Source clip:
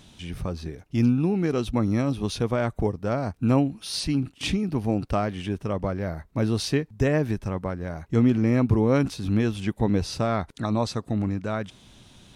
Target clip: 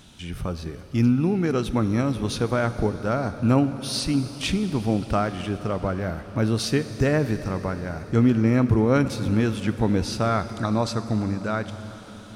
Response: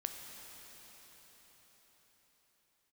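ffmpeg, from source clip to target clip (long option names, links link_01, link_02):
-filter_complex "[0:a]equalizer=frequency=1400:width_type=o:width=0.31:gain=6,asplit=2[link_01][link_02];[1:a]atrim=start_sample=2205,highshelf=frequency=6200:gain=6.5[link_03];[link_02][link_03]afir=irnorm=-1:irlink=0,volume=-2.5dB[link_04];[link_01][link_04]amix=inputs=2:normalize=0,volume=-3dB"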